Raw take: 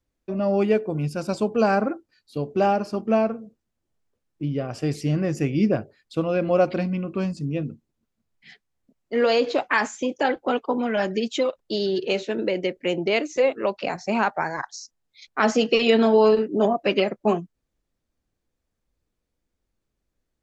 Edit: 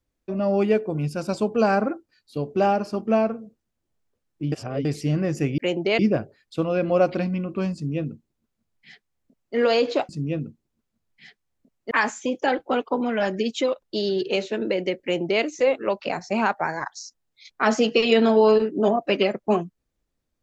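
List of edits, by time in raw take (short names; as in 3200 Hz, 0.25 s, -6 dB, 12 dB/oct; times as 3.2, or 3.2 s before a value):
4.52–4.85 reverse
7.33–9.15 copy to 9.68
12.79–13.2 copy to 5.58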